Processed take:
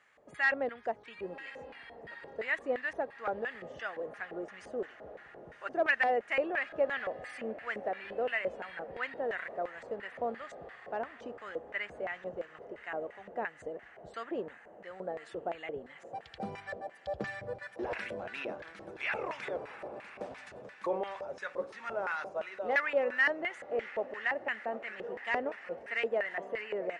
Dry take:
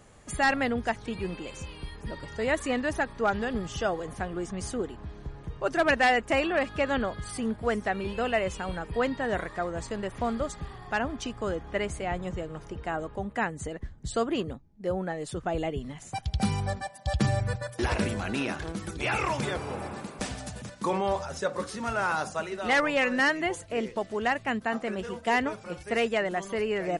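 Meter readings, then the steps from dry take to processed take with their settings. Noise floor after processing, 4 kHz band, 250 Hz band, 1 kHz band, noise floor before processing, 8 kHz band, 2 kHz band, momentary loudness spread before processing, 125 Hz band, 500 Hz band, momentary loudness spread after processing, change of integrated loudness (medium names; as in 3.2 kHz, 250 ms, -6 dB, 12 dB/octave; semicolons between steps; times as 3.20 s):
-55 dBFS, -11.5 dB, -14.0 dB, -8.0 dB, -48 dBFS, under -20 dB, -4.0 dB, 12 LU, -22.0 dB, -5.5 dB, 15 LU, -6.0 dB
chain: echo that smears into a reverb 1053 ms, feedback 66%, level -16 dB; LFO band-pass square 2.9 Hz 540–1900 Hz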